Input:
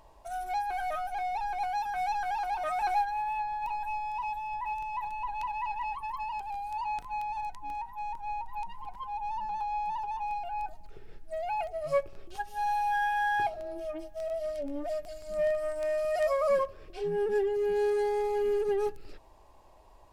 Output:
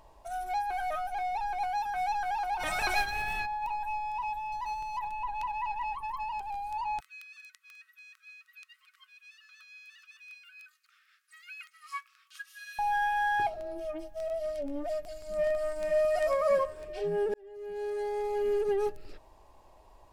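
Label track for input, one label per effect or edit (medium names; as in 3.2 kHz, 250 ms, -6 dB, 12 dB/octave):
2.590000	3.450000	spectral peaks clipped ceiling under each frame's peak by 22 dB
4.520000	4.990000	median filter over 15 samples
7.000000	12.790000	brick-wall FIR high-pass 1.1 kHz
14.930000	15.840000	echo throw 500 ms, feedback 55%, level -4 dB
17.340000	18.570000	fade in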